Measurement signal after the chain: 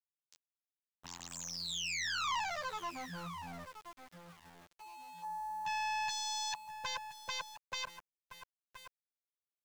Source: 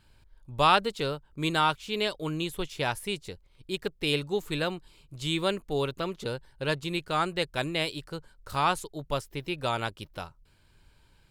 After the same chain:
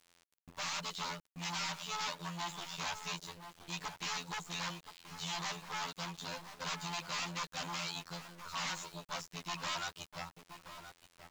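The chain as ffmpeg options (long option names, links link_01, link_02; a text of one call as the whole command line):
ffmpeg -i in.wav -filter_complex "[0:a]afftfilt=real='hypot(re,im)*cos(PI*b)':imag='0':win_size=2048:overlap=0.75,aeval=exprs='(tanh(35.5*val(0)+0.55)-tanh(0.55))/35.5':channel_layout=same,aeval=exprs='0.0106*(abs(mod(val(0)/0.0106+3,4)-2)-1)':channel_layout=same,acrossover=split=310|3000[link_01][link_02][link_03];[link_01]acompressor=threshold=-57dB:ratio=10[link_04];[link_04][link_02][link_03]amix=inputs=3:normalize=0,aresample=16000,aresample=44100,equalizer=frequency=160:width_type=o:width=0.67:gain=12,equalizer=frequency=400:width_type=o:width=0.67:gain=-11,equalizer=frequency=1000:width_type=o:width=0.67:gain=9,asplit=2[link_05][link_06];[link_06]adelay=1024,lowpass=frequency=1300:poles=1,volume=-8dB,asplit=2[link_07][link_08];[link_08]adelay=1024,lowpass=frequency=1300:poles=1,volume=0.25,asplit=2[link_09][link_10];[link_10]adelay=1024,lowpass=frequency=1300:poles=1,volume=0.25[link_11];[link_05][link_07][link_09][link_11]amix=inputs=4:normalize=0,acrossover=split=4400[link_12][link_13];[link_13]acompressor=threshold=-57dB:ratio=4:attack=1:release=60[link_14];[link_12][link_14]amix=inputs=2:normalize=0,crystalizer=i=5.5:c=0,aeval=exprs='val(0)*gte(abs(val(0)),0.00251)':channel_layout=same" out.wav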